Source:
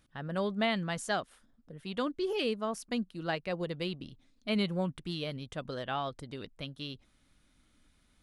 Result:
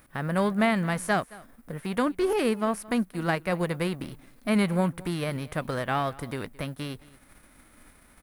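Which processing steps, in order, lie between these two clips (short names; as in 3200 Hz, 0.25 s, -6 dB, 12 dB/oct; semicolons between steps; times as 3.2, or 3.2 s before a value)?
spectral whitening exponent 0.6; in parallel at +1 dB: compressor, threshold -45 dBFS, peak gain reduction 18.5 dB; on the sum: band shelf 4600 Hz -11 dB; echo 0.22 s -21.5 dB; gain +6 dB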